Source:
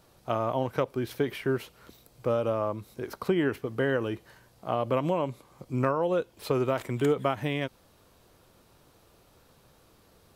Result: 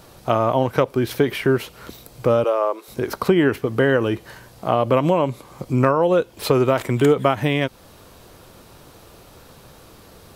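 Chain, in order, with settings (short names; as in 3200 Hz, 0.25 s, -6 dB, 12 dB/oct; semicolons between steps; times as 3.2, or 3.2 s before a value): in parallel at +1 dB: compressor, threshold -36 dBFS, peak gain reduction 15 dB; 2.44–2.88 on the sum: Chebyshev high-pass 370 Hz, order 4; gain +7.5 dB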